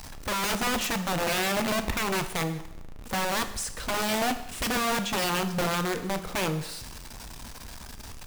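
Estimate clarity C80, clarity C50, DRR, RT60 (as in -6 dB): 14.0 dB, 11.5 dB, 8.5 dB, 0.85 s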